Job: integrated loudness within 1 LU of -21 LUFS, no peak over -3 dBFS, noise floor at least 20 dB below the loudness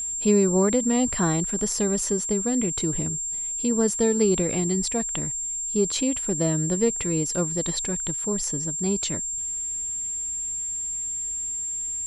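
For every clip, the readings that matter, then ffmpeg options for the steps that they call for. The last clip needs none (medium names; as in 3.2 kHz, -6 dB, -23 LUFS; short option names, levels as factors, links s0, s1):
steady tone 7.4 kHz; tone level -27 dBFS; loudness -24.0 LUFS; peak level -8.5 dBFS; loudness target -21.0 LUFS
-> -af "bandreject=f=7400:w=30"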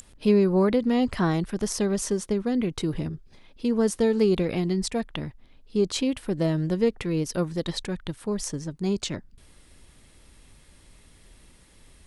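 steady tone not found; loudness -26.0 LUFS; peak level -9.5 dBFS; loudness target -21.0 LUFS
-> -af "volume=1.78"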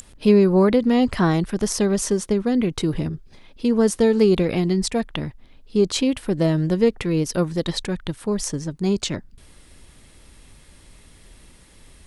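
loudness -21.0 LUFS; peak level -4.5 dBFS; noise floor -50 dBFS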